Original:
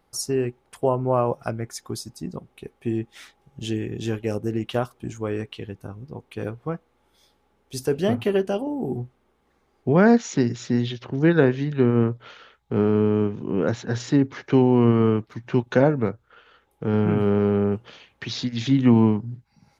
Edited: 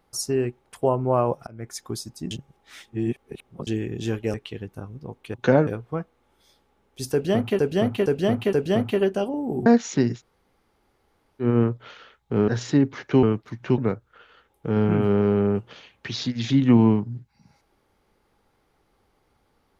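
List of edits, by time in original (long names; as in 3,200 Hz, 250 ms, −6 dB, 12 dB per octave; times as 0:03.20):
0:01.47–0:01.74: fade in
0:02.31–0:03.67: reverse
0:04.34–0:05.41: remove
0:07.86–0:08.33: repeat, 4 plays
0:08.99–0:10.06: remove
0:10.57–0:11.84: fill with room tone, crossfade 0.10 s
0:12.88–0:13.87: remove
0:14.62–0:15.07: remove
0:15.62–0:15.95: move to 0:06.41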